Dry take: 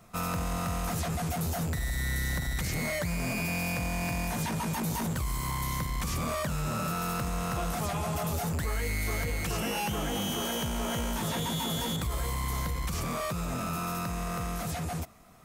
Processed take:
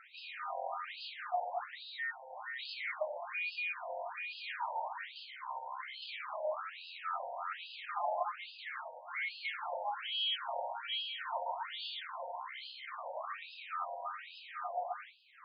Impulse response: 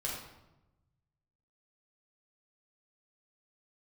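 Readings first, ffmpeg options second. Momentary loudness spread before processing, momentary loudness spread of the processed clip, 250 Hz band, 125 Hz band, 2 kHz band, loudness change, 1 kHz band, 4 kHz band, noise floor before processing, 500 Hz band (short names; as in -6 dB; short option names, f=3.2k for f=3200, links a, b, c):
2 LU, 8 LU, under -40 dB, under -40 dB, -4.5 dB, -8.0 dB, -3.5 dB, -3.0 dB, -34 dBFS, -6.0 dB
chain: -filter_complex "[0:a]acompressor=mode=upward:threshold=-37dB:ratio=2.5[a];[1:a]atrim=start_sample=2205,asetrate=61740,aresample=44100[b];[a][b]afir=irnorm=-1:irlink=0,afftfilt=real='re*between(b*sr/1024,670*pow(3600/670,0.5+0.5*sin(2*PI*1.2*pts/sr))/1.41,670*pow(3600/670,0.5+0.5*sin(2*PI*1.2*pts/sr))*1.41)':imag='im*between(b*sr/1024,670*pow(3600/670,0.5+0.5*sin(2*PI*1.2*pts/sr))/1.41,670*pow(3600/670,0.5+0.5*sin(2*PI*1.2*pts/sr))*1.41)':win_size=1024:overlap=0.75,volume=1dB"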